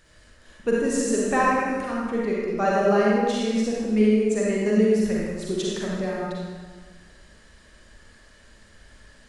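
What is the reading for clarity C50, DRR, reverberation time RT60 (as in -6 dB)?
-3.5 dB, -5.0 dB, 1.5 s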